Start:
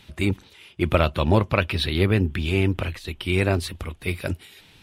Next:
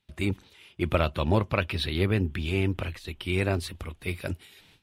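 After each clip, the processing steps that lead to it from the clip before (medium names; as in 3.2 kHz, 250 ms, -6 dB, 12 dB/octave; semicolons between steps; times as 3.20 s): gate with hold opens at -41 dBFS; trim -5 dB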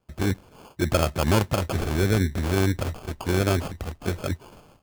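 in parallel at -0.5 dB: peak limiter -17.5 dBFS, peak gain reduction 8.5 dB; on the sum: sample-and-hold 23×; trim -1 dB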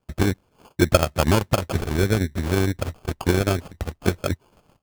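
transient shaper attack +9 dB, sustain -11 dB; trim -1 dB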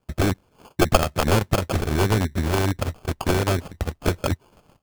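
one-sided wavefolder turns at -15 dBFS; trim +2.5 dB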